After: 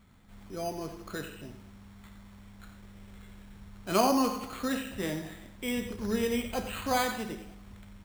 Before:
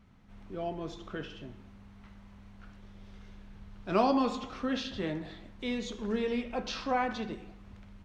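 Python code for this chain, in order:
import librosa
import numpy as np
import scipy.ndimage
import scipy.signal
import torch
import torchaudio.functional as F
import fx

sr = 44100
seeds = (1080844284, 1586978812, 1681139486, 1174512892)

y = fx.high_shelf(x, sr, hz=2400.0, db=12.0)
y = np.repeat(scipy.signal.resample_poly(y, 1, 8), 8)[:len(y)]
y = fx.peak_eq(y, sr, hz=80.0, db=13.0, octaves=1.0, at=(5.77, 7.02))
y = y + 10.0 ** (-11.0 / 20.0) * np.pad(y, (int(90 * sr / 1000.0), 0))[:len(y)]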